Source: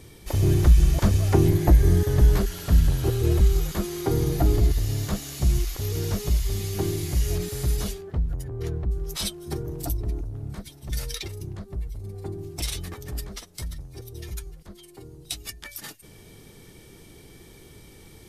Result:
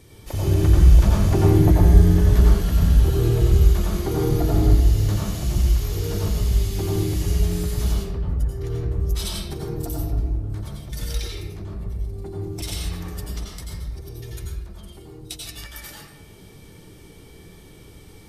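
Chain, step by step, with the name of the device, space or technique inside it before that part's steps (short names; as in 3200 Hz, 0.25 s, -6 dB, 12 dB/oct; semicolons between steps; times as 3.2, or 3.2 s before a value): bathroom (reverb RT60 1.0 s, pre-delay 82 ms, DRR -3.5 dB); gain -3 dB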